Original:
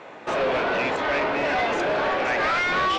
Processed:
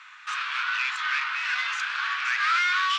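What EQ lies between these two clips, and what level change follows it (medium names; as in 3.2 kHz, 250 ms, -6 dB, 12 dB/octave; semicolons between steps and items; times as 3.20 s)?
steep high-pass 1.2 kHz 48 dB/octave; peaking EQ 2 kHz -3.5 dB 0.47 oct; +2.5 dB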